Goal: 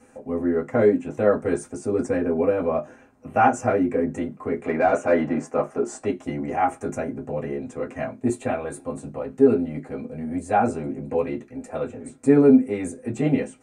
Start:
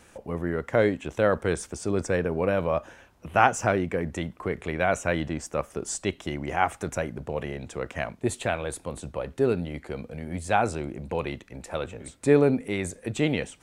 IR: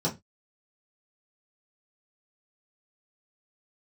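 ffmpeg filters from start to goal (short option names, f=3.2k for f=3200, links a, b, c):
-filter_complex "[0:a]asettb=1/sr,asplit=3[a][b][c];[a]atrim=end=4.644[d];[b]atrim=start=4.64:end=6.04,asetpts=PTS-STARTPTS,afade=t=in:d=0.004:c=qsin,afade=t=out:st=1.396:d=0.004:c=qsin,asplit=2[e][f];[f]highpass=f=720:p=1,volume=16dB,asoftclip=type=tanh:threshold=-8dB[g];[e][g]amix=inputs=2:normalize=0,lowpass=f=1.5k:p=1,volume=-6dB[h];[c]atrim=start=6.036[i];[d][h]acrossfade=d=0.004:c1=hsin:c2=qsin[j];[j][i]acrossfade=d=0.004:c1=qsin:c2=hsin[k];[1:a]atrim=start_sample=2205,asetrate=70560,aresample=44100[l];[k][l]afir=irnorm=-1:irlink=0,volume=-8dB"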